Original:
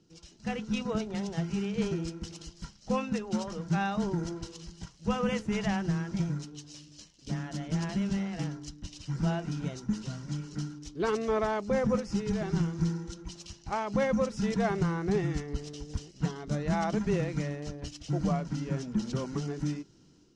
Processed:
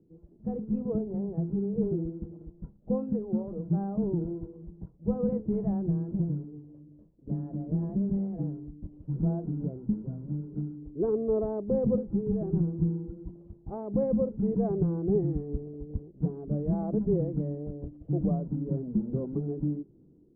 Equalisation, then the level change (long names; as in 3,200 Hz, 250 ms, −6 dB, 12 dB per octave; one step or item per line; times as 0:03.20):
transistor ladder low-pass 610 Hz, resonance 25%
+7.0 dB